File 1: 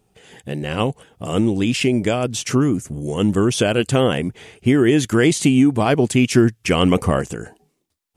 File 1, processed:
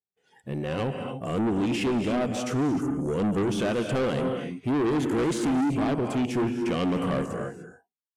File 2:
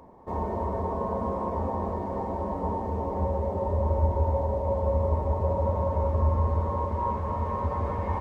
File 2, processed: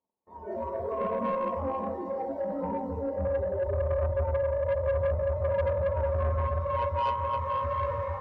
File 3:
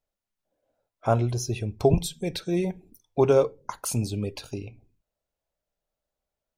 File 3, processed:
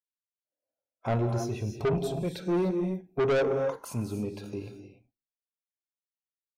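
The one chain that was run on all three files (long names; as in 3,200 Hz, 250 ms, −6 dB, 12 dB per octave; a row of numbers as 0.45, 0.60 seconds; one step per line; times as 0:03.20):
noise gate −48 dBFS, range −20 dB
RIAA equalisation recording
noise reduction from a noise print of the clip's start 17 dB
automatic gain control gain up to 6 dB
harmonic and percussive parts rebalanced percussive −9 dB
drawn EQ curve 240 Hz 0 dB, 1,600 Hz −9 dB, 9,200 Hz −27 dB
reverb whose tail is shaped and stops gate 320 ms rising, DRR 7.5 dB
soft clipping −27.5 dBFS
level +5.5 dB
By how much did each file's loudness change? −9.0, −1.5, −4.0 LU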